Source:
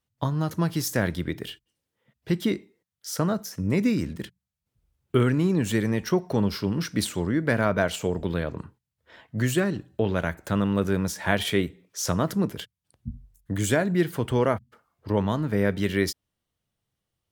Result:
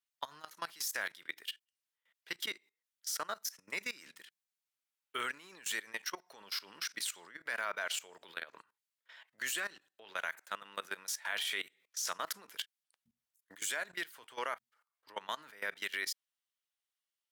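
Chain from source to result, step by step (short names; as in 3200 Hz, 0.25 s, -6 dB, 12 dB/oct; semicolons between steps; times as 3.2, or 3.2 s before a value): HPF 1400 Hz 12 dB/oct; level quantiser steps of 19 dB; gain +1.5 dB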